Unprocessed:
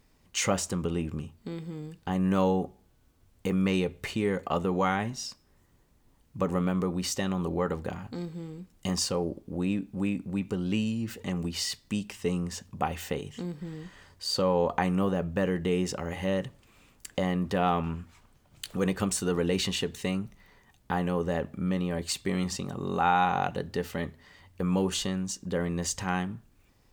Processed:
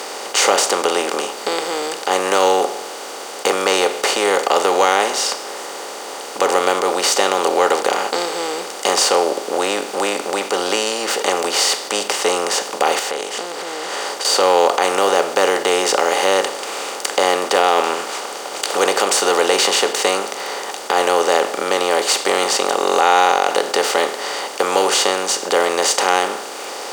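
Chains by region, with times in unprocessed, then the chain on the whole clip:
12.99–14.25 s: compression 4:1, threshold -50 dBFS + loudspeaker Doppler distortion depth 0.29 ms
whole clip: spectral levelling over time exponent 0.4; high-pass 380 Hz 24 dB/octave; loudness maximiser +10 dB; trim -1 dB

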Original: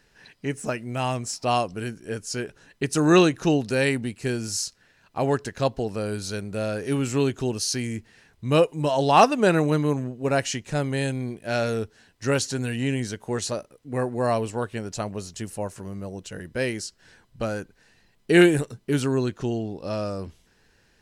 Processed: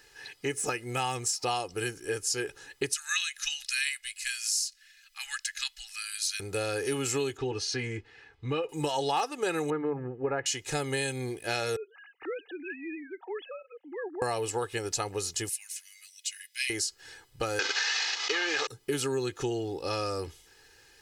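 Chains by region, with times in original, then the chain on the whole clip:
2.92–6.40 s: inverse Chebyshev band-stop 120–510 Hz, stop band 70 dB + loudspeaker Doppler distortion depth 0.12 ms
7.37–8.69 s: low-pass 2.8 kHz + compression, threshold -21 dBFS + comb of notches 180 Hz
9.70–10.46 s: low-pass 1.8 kHz 24 dB/octave + hum notches 50/100/150 Hz
11.76–14.22 s: formants replaced by sine waves + compression 2:1, threshold -48 dBFS
15.49–16.70 s: elliptic high-pass 2.1 kHz, stop band 80 dB + comb 7.2 ms, depth 34%
17.59–18.67 s: CVSD coder 32 kbps + high-pass 960 Hz + level flattener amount 100%
whole clip: tilt EQ +2 dB/octave; comb 2.4 ms, depth 76%; compression 6:1, threshold -28 dBFS; trim +1 dB

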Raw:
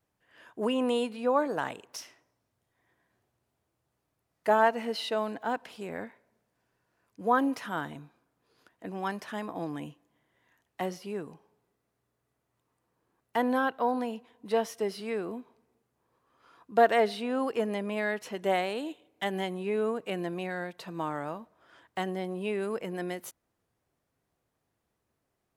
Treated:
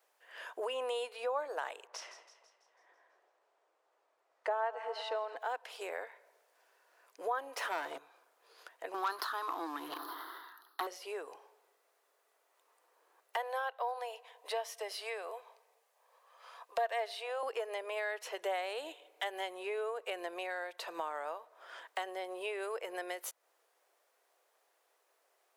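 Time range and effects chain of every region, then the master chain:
1.87–5.36 s: FFT filter 1.1 kHz 0 dB, 3.2 kHz -7 dB, 7.9 kHz -12 dB, 12 kHz -24 dB + two-band feedback delay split 1 kHz, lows 239 ms, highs 165 ms, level -15 dB
7.57–7.98 s: tilt shelf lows +5.5 dB, about 660 Hz + waveshaping leveller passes 3
8.94–10.87 s: FFT filter 220 Hz 0 dB, 320 Hz +8 dB, 540 Hz -17 dB, 1.3 kHz +10 dB, 2.4 kHz -21 dB, 4.2 kHz +7 dB, 7.7 kHz -28 dB, 11 kHz +3 dB + waveshaping leveller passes 2 + decay stretcher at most 52 dB/s
13.36–17.43 s: Chebyshev high-pass 540 Hz, order 3 + band-stop 1.4 kHz, Q 9.4
whole clip: inverse Chebyshev high-pass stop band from 230 Hz, stop band 40 dB; compression 2.5:1, threshold -50 dBFS; trim +8.5 dB

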